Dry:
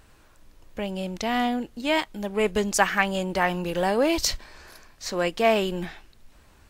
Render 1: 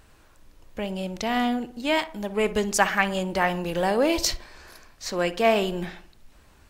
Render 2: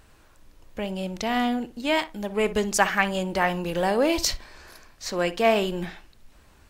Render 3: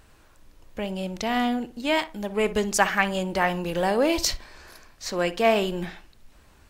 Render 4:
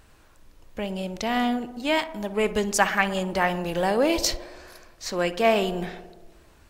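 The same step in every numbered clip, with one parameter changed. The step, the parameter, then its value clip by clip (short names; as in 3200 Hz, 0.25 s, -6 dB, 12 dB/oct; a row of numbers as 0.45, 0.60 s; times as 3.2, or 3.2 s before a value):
tape echo, feedback: 54, 21, 31, 83%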